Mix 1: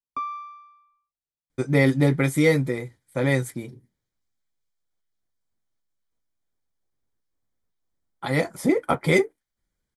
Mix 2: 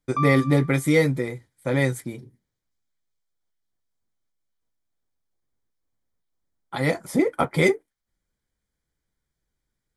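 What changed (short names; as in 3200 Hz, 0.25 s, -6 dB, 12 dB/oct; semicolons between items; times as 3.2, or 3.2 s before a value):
speech: entry -1.50 s; background +3.5 dB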